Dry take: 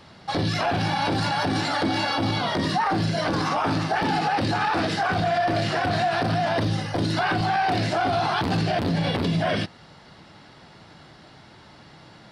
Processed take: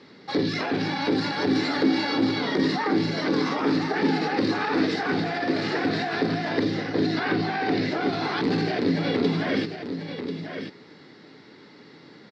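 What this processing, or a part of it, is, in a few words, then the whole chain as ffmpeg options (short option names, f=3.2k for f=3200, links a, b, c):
kitchen radio: -filter_complex "[0:a]highpass=220,equalizer=f=270:t=q:w=4:g=6,equalizer=f=430:t=q:w=4:g=9,equalizer=f=670:t=q:w=4:g=-8,equalizer=f=2k:t=q:w=4:g=6,equalizer=f=3k:t=q:w=4:g=-6,lowpass=f=4.6k:w=0.5412,lowpass=f=4.6k:w=1.3066,asettb=1/sr,asplit=3[a][b][c];[a]atrim=end=6.714[d];[b]atrim=start=6.71:end=8.02,asetpts=PTS-STARTPTS,afade=t=in:d=0.004:c=qsin,afade=t=out:st=1.306:d=0.004:c=qsin,lowpass=5.6k[e];[c]atrim=start=8.016[f];[d][e]acrossfade=d=0.004:c1=hsin:c2=qsin[g];[g][f]acrossfade=d=0.004:c1=qsin:c2=hsin,firequalizer=gain_entry='entry(260,0);entry(920,-7);entry(8400,8)':delay=0.05:min_phase=1,aecho=1:1:1040:0.376,volume=1.5dB"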